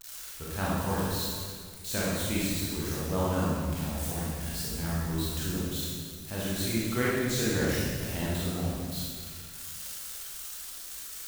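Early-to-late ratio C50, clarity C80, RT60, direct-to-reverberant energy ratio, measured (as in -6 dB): -3.5 dB, -1.0 dB, 1.8 s, -7.5 dB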